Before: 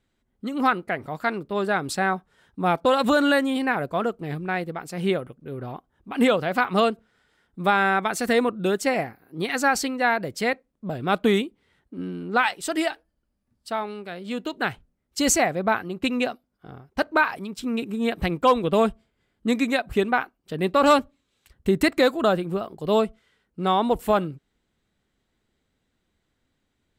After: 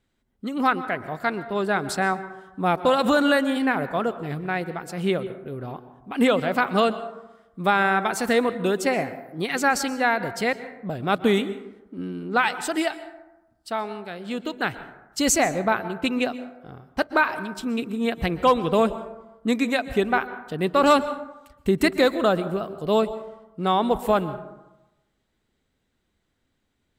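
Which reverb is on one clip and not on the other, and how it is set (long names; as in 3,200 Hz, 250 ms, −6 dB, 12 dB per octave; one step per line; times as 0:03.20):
dense smooth reverb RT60 1 s, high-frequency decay 0.4×, pre-delay 110 ms, DRR 13.5 dB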